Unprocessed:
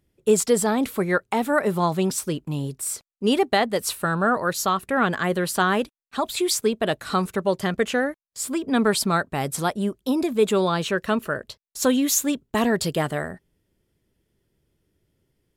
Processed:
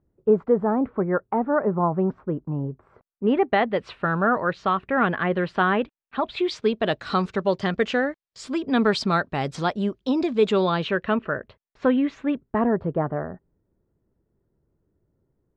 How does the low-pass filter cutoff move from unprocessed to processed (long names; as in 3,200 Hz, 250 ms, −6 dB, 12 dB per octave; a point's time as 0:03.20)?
low-pass filter 24 dB per octave
0:02.92 1,300 Hz
0:03.63 2,900 Hz
0:06.17 2,900 Hz
0:06.95 5,100 Hz
0:10.50 5,100 Hz
0:11.38 2,300 Hz
0:12.33 2,300 Hz
0:12.73 1,300 Hz